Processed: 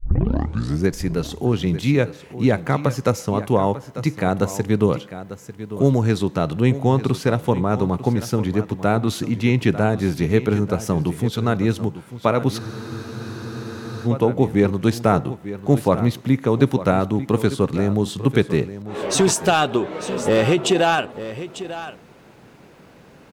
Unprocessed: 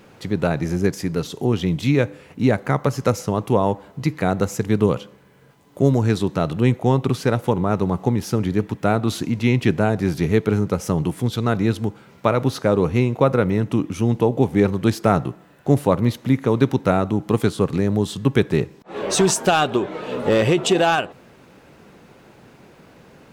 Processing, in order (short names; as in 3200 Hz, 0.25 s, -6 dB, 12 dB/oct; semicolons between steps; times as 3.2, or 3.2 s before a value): tape start at the beginning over 0.88 s; echo 0.896 s -13.5 dB; spectral freeze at 12.62, 1.44 s